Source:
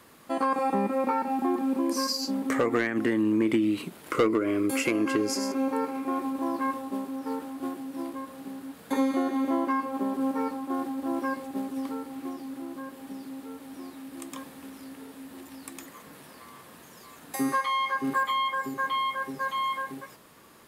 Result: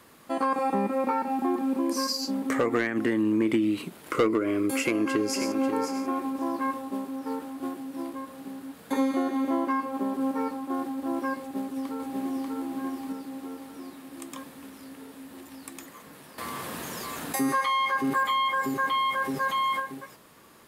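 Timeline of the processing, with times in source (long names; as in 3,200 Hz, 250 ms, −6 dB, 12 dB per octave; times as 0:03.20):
0:04.79–0:05.57: delay throw 540 ms, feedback 10%, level −9 dB
0:11.40–0:12.53: delay throw 590 ms, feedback 45%, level −1 dB
0:16.38–0:19.80: envelope flattener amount 50%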